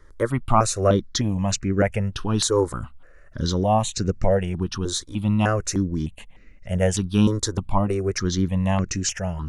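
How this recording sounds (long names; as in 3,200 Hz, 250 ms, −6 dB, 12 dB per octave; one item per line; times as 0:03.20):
notches that jump at a steady rate 3.3 Hz 720–3,300 Hz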